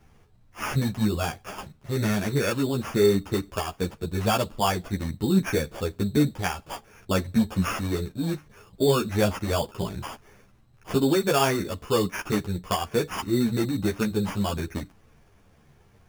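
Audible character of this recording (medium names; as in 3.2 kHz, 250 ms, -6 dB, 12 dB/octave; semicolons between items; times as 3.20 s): aliases and images of a low sample rate 4 kHz, jitter 0%; a shimmering, thickened sound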